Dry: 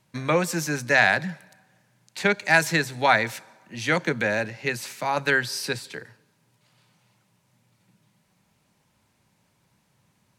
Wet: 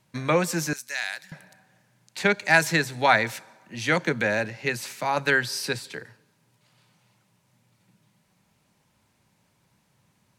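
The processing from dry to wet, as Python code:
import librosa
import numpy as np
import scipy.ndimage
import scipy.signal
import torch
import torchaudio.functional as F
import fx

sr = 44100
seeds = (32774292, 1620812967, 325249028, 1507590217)

y = fx.differentiator(x, sr, at=(0.73, 1.32))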